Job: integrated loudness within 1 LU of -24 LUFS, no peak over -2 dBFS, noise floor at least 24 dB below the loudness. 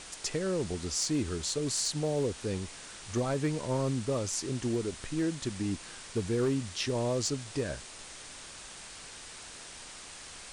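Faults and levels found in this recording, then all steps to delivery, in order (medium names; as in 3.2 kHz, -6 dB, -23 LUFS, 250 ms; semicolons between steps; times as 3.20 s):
clipped samples 0.4%; clipping level -23.0 dBFS; noise floor -47 dBFS; noise floor target -57 dBFS; loudness -32.5 LUFS; peak level -23.0 dBFS; loudness target -24.0 LUFS
-> clip repair -23 dBFS; noise print and reduce 10 dB; trim +8.5 dB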